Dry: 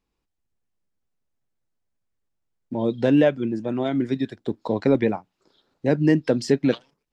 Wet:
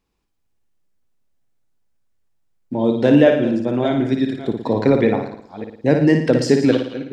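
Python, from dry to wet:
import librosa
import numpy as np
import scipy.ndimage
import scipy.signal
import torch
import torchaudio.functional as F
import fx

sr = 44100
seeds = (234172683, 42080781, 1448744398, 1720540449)

p1 = fx.reverse_delay(x, sr, ms=297, wet_db=-12.5)
p2 = p1 + fx.room_flutter(p1, sr, wall_m=9.7, rt60_s=0.58, dry=0)
y = F.gain(torch.from_numpy(p2), 4.5).numpy()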